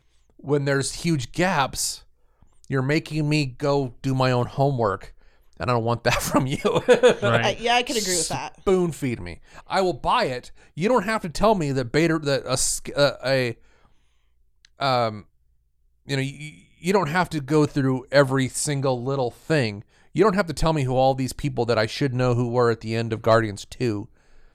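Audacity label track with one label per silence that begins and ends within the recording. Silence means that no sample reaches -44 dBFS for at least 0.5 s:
13.850000	14.650000	silence
15.230000	16.060000	silence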